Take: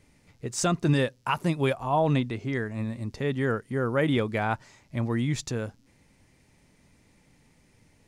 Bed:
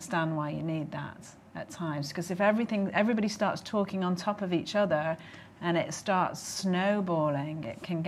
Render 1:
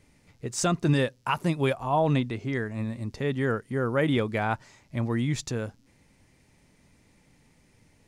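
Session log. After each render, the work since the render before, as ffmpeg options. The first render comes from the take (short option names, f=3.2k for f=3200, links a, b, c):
-af anull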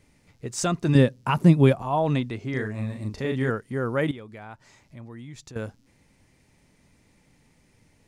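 -filter_complex "[0:a]asettb=1/sr,asplit=3[a][b][c];[a]atrim=end=0.954[d];[b]atrim=start=0.95:end=1.82,asetpts=PTS-STARTPTS,afade=t=in:d=0.004:c=qsin,afade=t=out:st=0.866:d=0.004:c=qsin,equalizer=f=180:t=o:w=2.5:g=12[e];[c]atrim=start=1.816[f];[d][e]acrossfade=d=0.004:c1=hsin:c2=qsin[g];[g][f]acrossfade=d=0.004:c1=qsin:c2=hsin,asettb=1/sr,asplit=3[h][i][j];[h]atrim=end=2.504[k];[i]atrim=start=2.5:end=3.5,asetpts=PTS-STARTPTS,afade=t=in:d=0.004:c=qsin,afade=t=out:st=0.996:d=0.004:c=qsin,asplit=2[l][m];[m]adelay=38,volume=-4dB[n];[l][n]amix=inputs=2:normalize=0,atrim=end_sample=44100[o];[j]atrim=start=3.496[p];[k][o]acrossfade=d=0.004:c1=hsin:c2=qsin[q];[q][p]acrossfade=d=0.004:c1=qsin:c2=hsin,asettb=1/sr,asplit=3[r][s][t];[r]atrim=end=4.114[u];[s]atrim=start=4.11:end=5.56,asetpts=PTS-STARTPTS,afade=t=in:d=0.004:c=qsin,afade=t=out:st=1.446:d=0.004:c=qsin,acompressor=threshold=-50dB:ratio=2:attack=3.2:release=140:knee=1:detection=peak[v];[t]atrim=start=5.556[w];[u][v]acrossfade=d=0.004:c1=hsin:c2=qsin[x];[x][w]acrossfade=d=0.004:c1=qsin:c2=hsin"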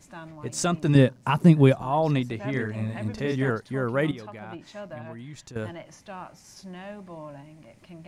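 -filter_complex "[1:a]volume=-12.5dB[a];[0:a][a]amix=inputs=2:normalize=0"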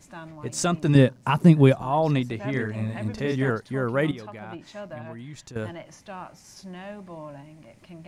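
-af "volume=1dB"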